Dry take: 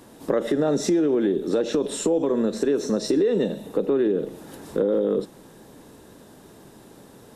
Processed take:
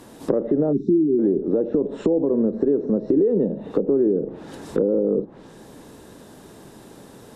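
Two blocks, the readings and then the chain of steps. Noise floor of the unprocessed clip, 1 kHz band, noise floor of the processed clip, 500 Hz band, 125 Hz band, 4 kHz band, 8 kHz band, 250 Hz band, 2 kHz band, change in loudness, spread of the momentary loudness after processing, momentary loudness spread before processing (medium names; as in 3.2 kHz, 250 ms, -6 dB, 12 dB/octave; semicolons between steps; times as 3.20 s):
-49 dBFS, -4.0 dB, -46 dBFS, +1.5 dB, +3.5 dB, under -10 dB, under -15 dB, +3.0 dB, no reading, +2.0 dB, 7 LU, 7 LU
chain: low-pass that closes with the level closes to 520 Hz, closed at -21 dBFS; spectral selection erased 0.73–1.19 s, 410–3500 Hz; trim +3.5 dB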